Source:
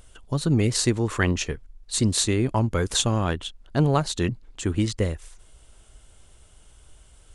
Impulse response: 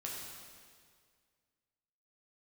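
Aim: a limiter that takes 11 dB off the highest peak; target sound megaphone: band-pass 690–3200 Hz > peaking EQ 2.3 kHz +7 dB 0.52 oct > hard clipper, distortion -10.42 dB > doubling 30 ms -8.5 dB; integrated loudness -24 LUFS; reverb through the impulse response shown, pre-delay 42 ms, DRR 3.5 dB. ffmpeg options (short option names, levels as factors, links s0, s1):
-filter_complex "[0:a]alimiter=limit=0.112:level=0:latency=1,asplit=2[s0][s1];[1:a]atrim=start_sample=2205,adelay=42[s2];[s1][s2]afir=irnorm=-1:irlink=0,volume=0.668[s3];[s0][s3]amix=inputs=2:normalize=0,highpass=690,lowpass=3200,equalizer=f=2300:t=o:w=0.52:g=7,asoftclip=type=hard:threshold=0.0266,asplit=2[s4][s5];[s5]adelay=30,volume=0.376[s6];[s4][s6]amix=inputs=2:normalize=0,volume=4.22"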